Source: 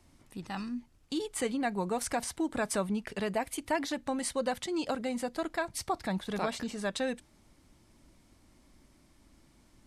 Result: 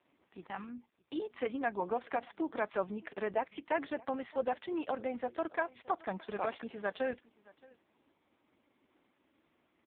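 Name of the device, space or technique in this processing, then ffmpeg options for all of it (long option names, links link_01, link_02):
satellite phone: -af "highpass=340,lowpass=3400,aecho=1:1:619:0.0668" -ar 8000 -c:a libopencore_amrnb -b:a 4750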